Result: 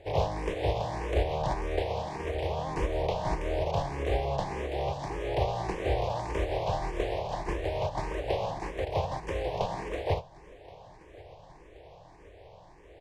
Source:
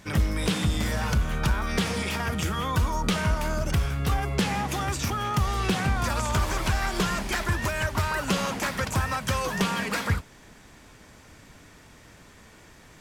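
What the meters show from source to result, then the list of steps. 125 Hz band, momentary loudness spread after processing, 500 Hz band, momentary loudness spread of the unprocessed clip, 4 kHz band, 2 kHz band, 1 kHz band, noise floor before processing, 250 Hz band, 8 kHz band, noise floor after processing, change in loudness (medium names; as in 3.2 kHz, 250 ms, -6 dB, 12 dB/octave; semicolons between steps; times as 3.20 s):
-7.0 dB, 5 LU, +3.0 dB, 2 LU, -10.5 dB, -11.5 dB, -3.5 dB, -52 dBFS, -9.5 dB, -18.0 dB, -53 dBFS, -5.0 dB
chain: spectral contrast reduction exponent 0.28; low-pass 1.1 kHz 12 dB/octave; in parallel at +2 dB: compression, threshold -38 dBFS, peak gain reduction 13.5 dB; on the sum: static phaser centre 560 Hz, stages 4; feedback delay 1076 ms, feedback 54%, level -22 dB; barber-pole phaser +1.7 Hz; trim +5 dB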